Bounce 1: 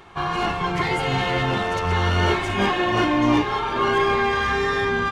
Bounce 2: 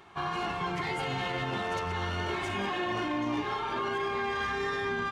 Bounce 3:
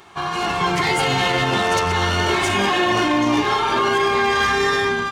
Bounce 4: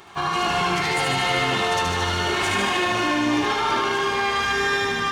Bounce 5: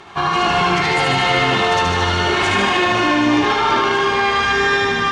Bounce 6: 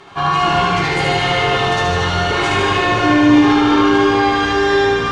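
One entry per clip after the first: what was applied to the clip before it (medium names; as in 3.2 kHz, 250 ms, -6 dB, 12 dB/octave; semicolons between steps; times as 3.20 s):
high-pass 100 Hz 6 dB/octave; band-stop 500 Hz, Q 12; peak limiter -16.5 dBFS, peak gain reduction 8 dB; trim -7 dB
tone controls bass -2 dB, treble +8 dB; level rider gain up to 6 dB; trim +7.5 dB
peak limiter -15.5 dBFS, peak gain reduction 6.5 dB; thinning echo 75 ms, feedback 77%, high-pass 790 Hz, level -3.5 dB; on a send at -12.5 dB: reverberation RT60 2.4 s, pre-delay 123 ms
distance through air 74 m; trim +6.5 dB
feedback echo behind a low-pass 175 ms, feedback 80%, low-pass 500 Hz, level -8 dB; simulated room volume 45 m³, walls mixed, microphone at 0.58 m; trim -3 dB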